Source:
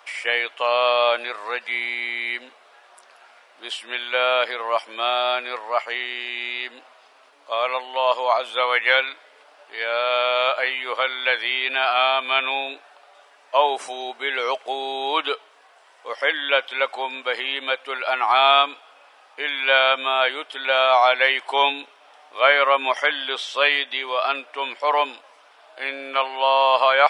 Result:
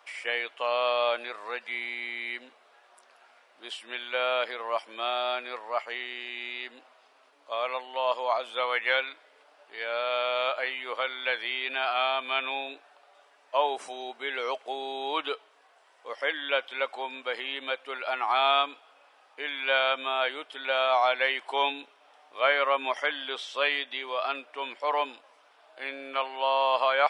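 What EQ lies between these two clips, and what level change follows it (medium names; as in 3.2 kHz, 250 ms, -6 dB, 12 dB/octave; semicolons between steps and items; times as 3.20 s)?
peaking EQ 140 Hz +5.5 dB 2.9 oct; -8.5 dB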